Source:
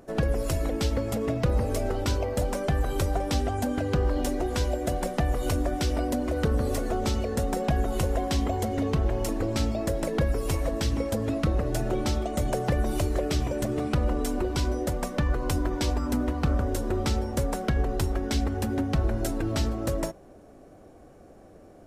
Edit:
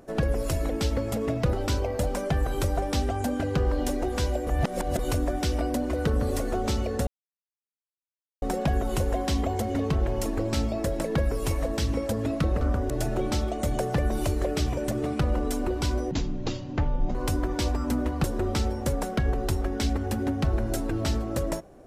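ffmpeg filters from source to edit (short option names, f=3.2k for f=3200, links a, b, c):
-filter_complex "[0:a]asplit=10[a][b][c][d][e][f][g][h][i][j];[a]atrim=end=1.532[k];[b]atrim=start=1.908:end=4.852[l];[c]atrim=start=4.848:end=5.372,asetpts=PTS-STARTPTS,areverse[m];[d]atrim=start=5.368:end=7.45,asetpts=PTS-STARTPTS,afade=t=out:st=2.078:d=0.004:c=hsin,apad=pad_dur=1.35[n];[e]atrim=start=7.45:end=11.642,asetpts=PTS-STARTPTS,afade=t=in:d=0.004:c=hsin[o];[f]atrim=start=16.458:end=16.752[p];[g]atrim=start=11.638:end=14.854[q];[h]atrim=start=14.85:end=15.37,asetpts=PTS-STARTPTS,asetrate=22050,aresample=44100[r];[i]atrim=start=15.366:end=16.462[s];[j]atrim=start=16.748[t];[k][l]acrossfade=d=0.004:c1=hsin:c2=hsin[u];[u][m]acrossfade=d=0.004:c1=hsin:c2=hsin[v];[n][o]concat=n=2:v=0:a=1[w];[v][w]acrossfade=d=0.004:c1=hsin:c2=hsin[x];[x][p]acrossfade=d=0.004:c1=hsin:c2=hsin[y];[y][q]acrossfade=d=0.004:c1=hsin:c2=hsin[z];[z][r]acrossfade=d=0.004:c1=hsin:c2=hsin[aa];[aa][s]acrossfade=d=0.004:c1=hsin:c2=hsin[ab];[ab][t]acrossfade=d=0.004:c1=hsin:c2=hsin"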